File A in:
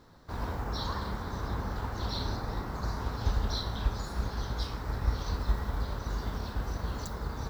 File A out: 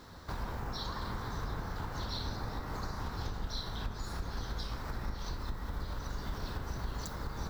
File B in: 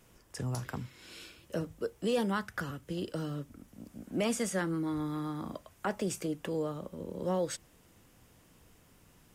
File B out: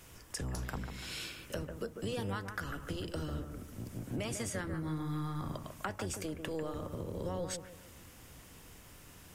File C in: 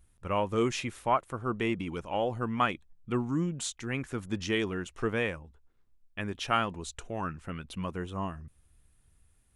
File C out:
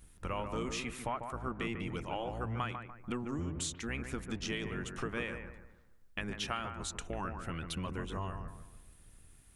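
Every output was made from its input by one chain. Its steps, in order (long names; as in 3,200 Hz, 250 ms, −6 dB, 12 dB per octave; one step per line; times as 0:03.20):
sub-octave generator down 1 octave, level +2 dB
tilt shelving filter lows −3.5 dB, about 880 Hz
downward compressor 4 to 1, threshold −43 dBFS
bucket-brigade delay 146 ms, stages 2,048, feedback 37%, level −7 dB
level +5.5 dB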